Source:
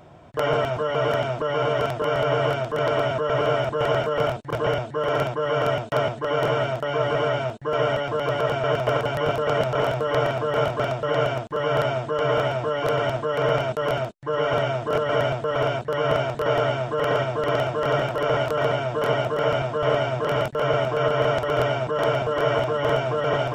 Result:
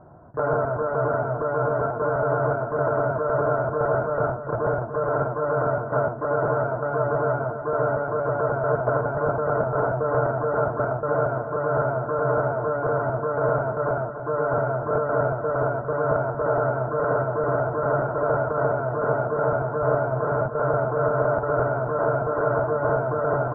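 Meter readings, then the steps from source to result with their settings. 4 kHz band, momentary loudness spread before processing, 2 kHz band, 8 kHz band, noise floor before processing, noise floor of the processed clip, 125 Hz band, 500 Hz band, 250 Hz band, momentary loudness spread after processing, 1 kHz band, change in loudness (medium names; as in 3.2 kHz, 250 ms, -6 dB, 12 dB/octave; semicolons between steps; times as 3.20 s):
under -40 dB, 3 LU, -2.5 dB, no reading, -36 dBFS, -31 dBFS, +0.5 dB, -0.5 dB, 0.0 dB, 2 LU, 0.0 dB, -0.5 dB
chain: Chebyshev low-pass 1.5 kHz, order 5; feedback delay 289 ms, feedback 38%, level -10 dB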